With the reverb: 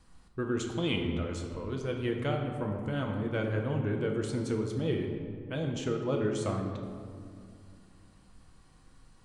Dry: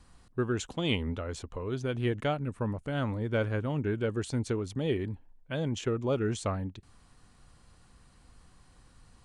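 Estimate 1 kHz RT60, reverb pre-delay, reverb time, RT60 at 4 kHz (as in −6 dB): 2.0 s, 6 ms, 2.2 s, 1.2 s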